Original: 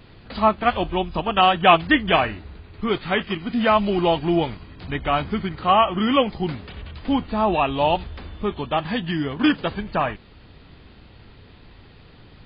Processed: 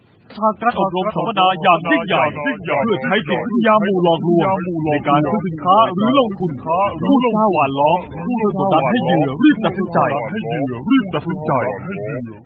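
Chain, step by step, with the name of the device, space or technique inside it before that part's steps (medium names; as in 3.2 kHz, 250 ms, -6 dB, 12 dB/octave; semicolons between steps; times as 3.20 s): 0.80–1.96 s: band-stop 400 Hz, Q 12; ever faster or slower copies 315 ms, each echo -2 st, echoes 3, each echo -6 dB; noise-suppressed video call (high-pass 100 Hz 24 dB/octave; spectral gate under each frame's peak -20 dB strong; level rider gain up to 13 dB; trim -1 dB; Opus 20 kbps 48 kHz)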